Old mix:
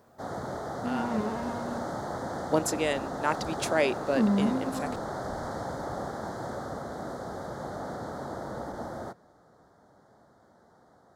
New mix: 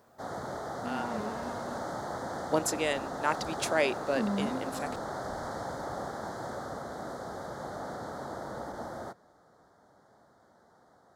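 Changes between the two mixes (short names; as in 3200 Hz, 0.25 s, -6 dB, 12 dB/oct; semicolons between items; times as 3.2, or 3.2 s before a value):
second sound: send off; master: add low shelf 500 Hz -5 dB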